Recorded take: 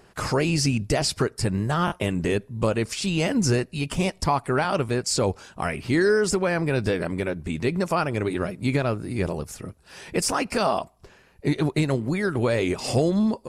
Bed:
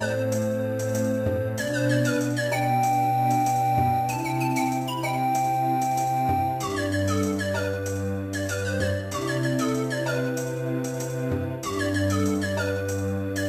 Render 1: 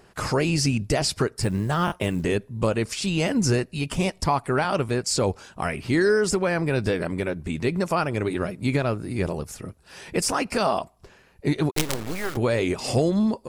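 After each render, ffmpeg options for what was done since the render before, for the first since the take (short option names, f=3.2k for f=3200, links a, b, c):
-filter_complex "[0:a]asettb=1/sr,asplit=3[a][b][c];[a]atrim=end=1.414[d];[b]atrim=start=1.41:end=2.24,asetpts=PTS-STARTPTS,afade=t=in:d=0.004:c=qsin,afade=t=out:st=0.826:d=0.004:c=qsin,acrusher=bits=8:mode=log:mix=0:aa=0.000001[e];[c]atrim=start=2.236[f];[d][e]acrossfade=d=0.004:c1=hsin:c2=qsin[g];[g][f]acrossfade=d=0.004:c1=qsin:c2=hsin,asettb=1/sr,asplit=3[h][i][j];[h]atrim=end=11.714[k];[i]atrim=start=11.71:end=12.37,asetpts=PTS-STARTPTS,afade=t=in:d=0.004:c=qsin,afade=t=out:st=0.656:d=0.004:c=qsin,acrusher=bits=3:dc=4:mix=0:aa=0.000001[l];[j]atrim=start=12.366[m];[k][l]acrossfade=d=0.004:c1=hsin:c2=qsin[n];[n][m]acrossfade=d=0.004:c1=qsin:c2=hsin"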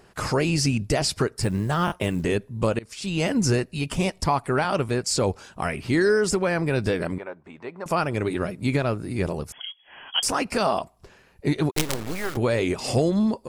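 -filter_complex "[0:a]asettb=1/sr,asplit=3[a][b][c];[a]atrim=end=7.184[d];[b]atrim=start=7.18:end=7.86,asetpts=PTS-STARTPTS,afade=t=in:d=0.004:c=qsin,afade=t=out:st=0.676:d=0.004:c=qsin,bandpass=f=930:t=q:w=1.7[e];[c]atrim=start=7.856[f];[d][e]acrossfade=d=0.004:c1=hsin:c2=qsin[g];[g][f]acrossfade=d=0.004:c1=qsin:c2=hsin,asettb=1/sr,asplit=3[h][i][j];[h]atrim=end=9.524[k];[i]atrim=start=9.52:end=10.23,asetpts=PTS-STARTPTS,afade=t=in:d=0.004:c=qsin,afade=t=out:st=0.706:d=0.004:c=qsin,lowpass=f=2.9k:t=q:w=0.5098,lowpass=f=2.9k:t=q:w=0.6013,lowpass=f=2.9k:t=q:w=0.9,lowpass=f=2.9k:t=q:w=2.563,afreqshift=-3400[l];[j]atrim=start=10.226[m];[k][l]acrossfade=d=0.004:c1=hsin:c2=qsin[n];[n][m]acrossfade=d=0.004:c1=qsin:c2=hsin,asplit=2[o][p];[o]atrim=end=2.79,asetpts=PTS-STARTPTS,afade=t=out:st=2.786:d=0.004:c=hsin:silence=0.0630957[q];[p]atrim=start=2.79,asetpts=PTS-STARTPTS,afade=t=in:d=0.45:silence=0.0630957[r];[q][r]concat=n=2:v=0:a=1"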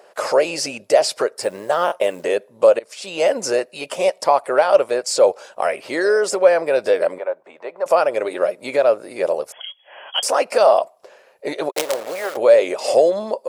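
-filter_complex "[0:a]asplit=2[a][b];[b]asoftclip=type=tanh:threshold=-14dB,volume=-11dB[c];[a][c]amix=inputs=2:normalize=0,highpass=f=560:t=q:w=4.9"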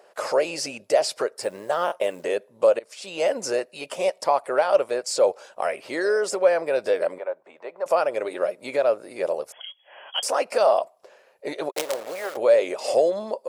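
-af "volume=-5.5dB"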